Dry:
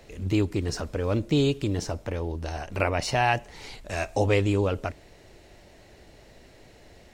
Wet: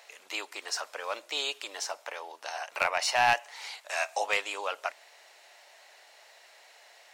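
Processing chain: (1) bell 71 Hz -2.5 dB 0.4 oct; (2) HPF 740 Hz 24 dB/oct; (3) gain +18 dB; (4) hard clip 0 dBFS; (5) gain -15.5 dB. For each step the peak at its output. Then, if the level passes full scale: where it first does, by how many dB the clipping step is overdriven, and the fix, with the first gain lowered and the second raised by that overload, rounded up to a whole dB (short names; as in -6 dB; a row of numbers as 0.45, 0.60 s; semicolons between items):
-8.5, -11.0, +7.0, 0.0, -15.5 dBFS; step 3, 7.0 dB; step 3 +11 dB, step 5 -8.5 dB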